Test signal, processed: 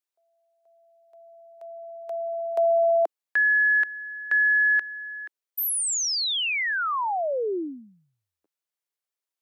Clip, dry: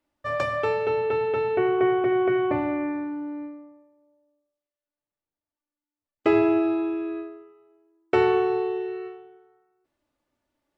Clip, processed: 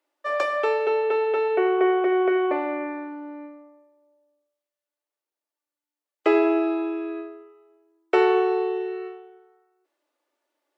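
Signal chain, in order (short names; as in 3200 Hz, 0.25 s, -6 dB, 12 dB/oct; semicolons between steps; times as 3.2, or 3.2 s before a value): steep high-pass 330 Hz 36 dB/oct; gain +2 dB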